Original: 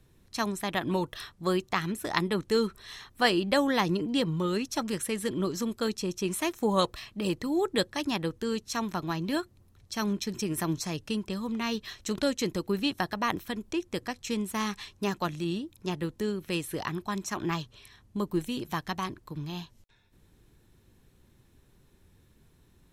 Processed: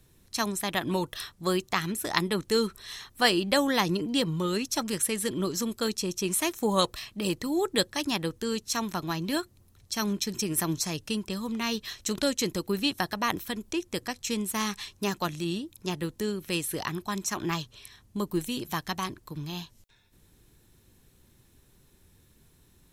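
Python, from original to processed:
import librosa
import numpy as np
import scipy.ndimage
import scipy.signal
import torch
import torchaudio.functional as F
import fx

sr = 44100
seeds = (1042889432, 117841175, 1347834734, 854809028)

y = fx.high_shelf(x, sr, hz=4200.0, db=9.0)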